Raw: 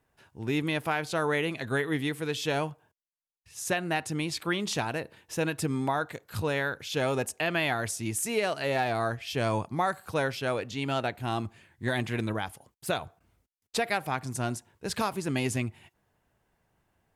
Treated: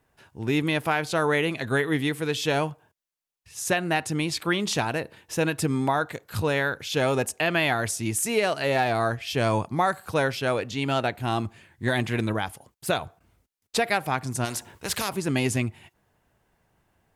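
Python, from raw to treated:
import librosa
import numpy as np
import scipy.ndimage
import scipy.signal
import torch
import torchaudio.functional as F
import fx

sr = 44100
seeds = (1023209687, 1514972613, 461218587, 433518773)

y = fx.spectral_comp(x, sr, ratio=2.0, at=(14.44, 15.08), fade=0.02)
y = F.gain(torch.from_numpy(y), 4.5).numpy()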